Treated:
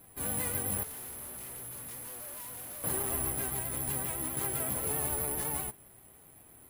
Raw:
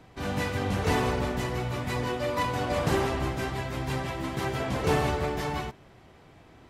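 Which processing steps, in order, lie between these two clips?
bad sample-rate conversion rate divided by 4×, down filtered, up zero stuff
brickwall limiter −10 dBFS, peak gain reduction 8 dB
pitch vibrato 7.7 Hz 61 cents
0:00.83–0:02.84: hard clipping −31.5 dBFS, distortion −5 dB
level −8 dB

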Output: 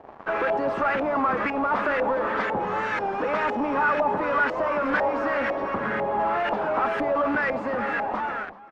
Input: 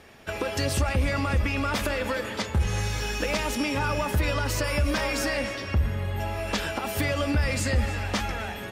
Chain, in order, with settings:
fade-out on the ending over 1.39 s
Bessel high-pass filter 290 Hz, order 6
in parallel at −8.5 dB: fuzz pedal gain 50 dB, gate −48 dBFS
on the sum: auto-filter low-pass saw up 2 Hz 750–1,700 Hz
single-tap delay 384 ms −18.5 dB
wow of a warped record 33 1/3 rpm, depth 100 cents
level −6 dB

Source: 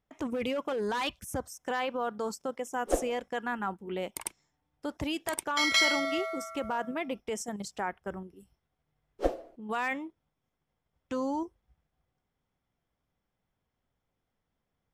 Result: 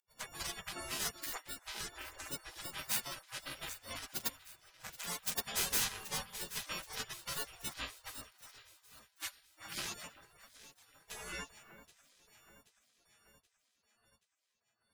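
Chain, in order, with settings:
every partial snapped to a pitch grid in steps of 4 semitones
0:08.32–0:09.77: ring modulation 180 Hz
EQ curve with evenly spaced ripples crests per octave 0.72, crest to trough 9 dB
reverb reduction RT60 0.69 s
0:01.23–0:02.27: low shelf with overshoot 230 Hz +11.5 dB, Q 3
in parallel at +2.5 dB: downward compressor, threshold −36 dBFS, peak gain reduction 18 dB
on the sum: soft clipping −19.5 dBFS, distortion −14 dB
delay that swaps between a low-pass and a high-pass 389 ms, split 1,600 Hz, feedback 72%, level −12 dB
gate on every frequency bin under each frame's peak −30 dB weak
level +7.5 dB

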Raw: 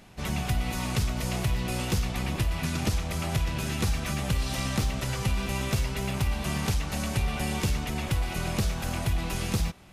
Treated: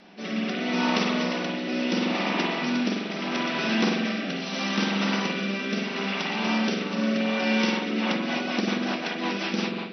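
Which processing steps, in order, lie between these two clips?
linear-phase brick-wall band-pass 180–6,000 Hz
spring reverb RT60 1.5 s, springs 45 ms, chirp 25 ms, DRR −3 dB
rotating-speaker cabinet horn 0.75 Hz, later 5.5 Hz, at 0:07.55
level +5.5 dB

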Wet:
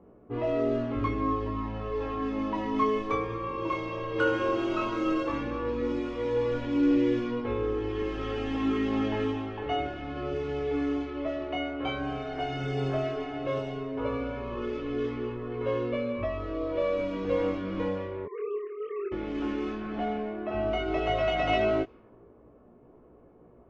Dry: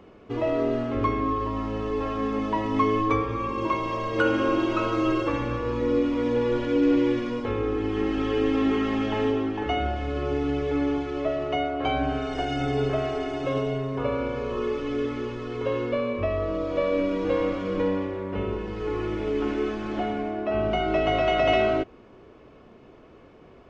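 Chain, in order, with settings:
0:18.25–0:19.12: three sine waves on the formant tracks
low-pass that shuts in the quiet parts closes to 840 Hz, open at −19.5 dBFS
chorus effect 0.13 Hz, delay 16.5 ms, depth 7.9 ms
level −1.5 dB

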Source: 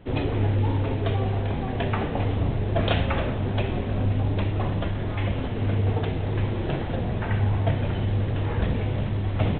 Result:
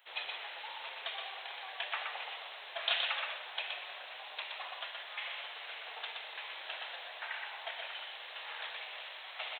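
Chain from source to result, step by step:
high-pass filter 670 Hz 24 dB per octave
first difference
single-tap delay 122 ms −4 dB
level +6.5 dB

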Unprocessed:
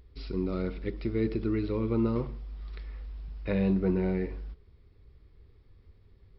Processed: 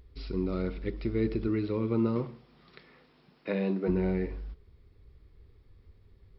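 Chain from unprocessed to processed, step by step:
0:01.47–0:03.87: high-pass filter 74 Hz → 230 Hz 24 dB per octave

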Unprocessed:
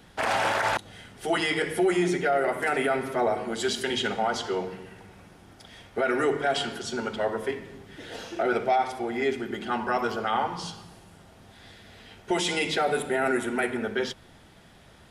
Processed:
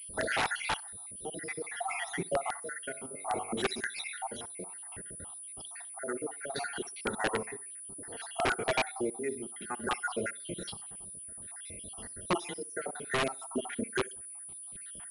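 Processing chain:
time-frequency cells dropped at random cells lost 71%
0:02.84–0:03.52: hum removal 47.77 Hz, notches 30
in parallel at 0 dB: downward compressor 12 to 1, threshold −41 dBFS, peak gain reduction 20 dB
on the sum: square-wave tremolo 0.61 Hz, depth 60%, duty 55%
on a send: tape delay 65 ms, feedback 32%, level −21 dB, low-pass 3,400 Hz
on the sum: wrap-around overflow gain 19 dB
switching amplifier with a slow clock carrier 9,800 Hz
level −2 dB

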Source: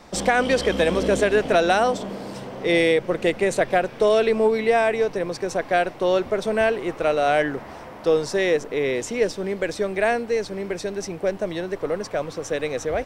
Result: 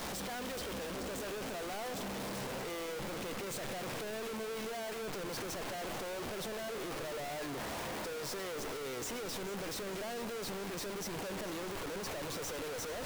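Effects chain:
sign of each sample alone
downward expander −7 dBFS
on a send: delay that swaps between a low-pass and a high-pass 220 ms, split 2,100 Hz, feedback 81%, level −13 dB
on the sum: level +12 dB

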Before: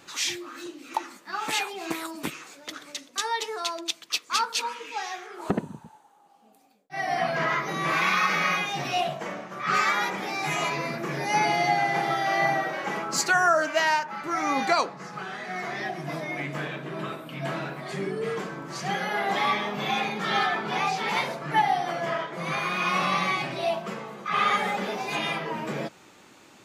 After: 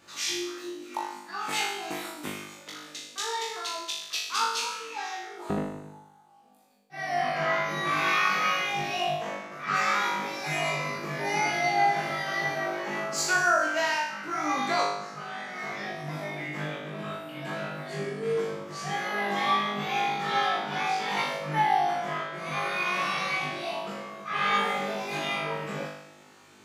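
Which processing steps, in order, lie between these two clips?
flutter between parallel walls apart 3.4 metres, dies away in 0.8 s
level −7 dB

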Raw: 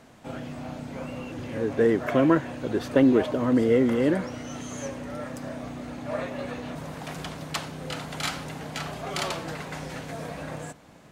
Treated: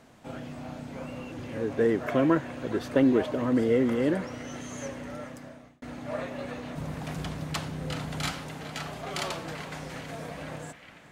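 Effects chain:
0:06.77–0:08.32: low-shelf EQ 210 Hz +10.5 dB
feedback echo with a band-pass in the loop 416 ms, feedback 85%, band-pass 2,100 Hz, level −13 dB
0:05.09–0:05.82: fade out
level −3 dB

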